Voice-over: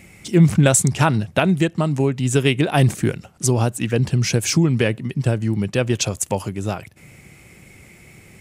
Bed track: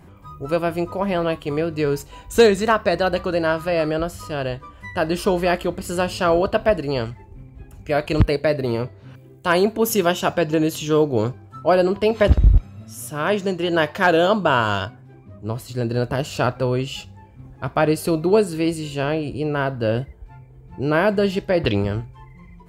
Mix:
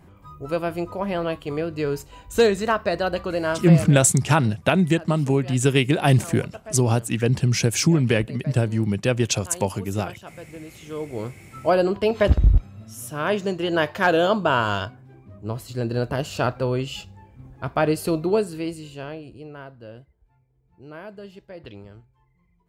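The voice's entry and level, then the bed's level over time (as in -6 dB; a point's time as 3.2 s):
3.30 s, -1.5 dB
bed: 3.66 s -4 dB
4.14 s -21 dB
10.64 s -21 dB
11.58 s -2.5 dB
18.14 s -2.5 dB
19.96 s -21 dB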